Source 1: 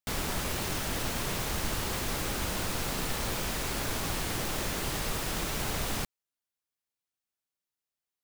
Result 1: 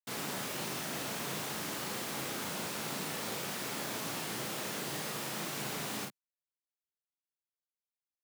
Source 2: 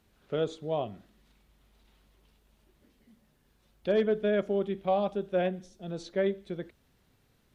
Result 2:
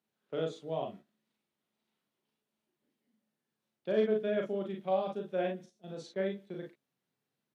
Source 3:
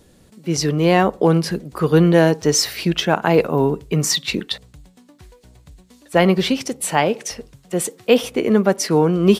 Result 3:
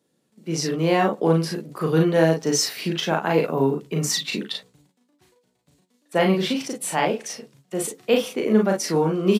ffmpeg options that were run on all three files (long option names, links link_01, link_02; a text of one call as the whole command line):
ffmpeg -i in.wav -filter_complex "[0:a]agate=range=-12dB:threshold=-43dB:ratio=16:detection=peak,highpass=frequency=140:width=0.5412,highpass=frequency=140:width=1.3066,asplit=2[link_01][link_02];[link_02]aecho=0:1:37|51:0.708|0.398[link_03];[link_01][link_03]amix=inputs=2:normalize=0,volume=-6.5dB" out.wav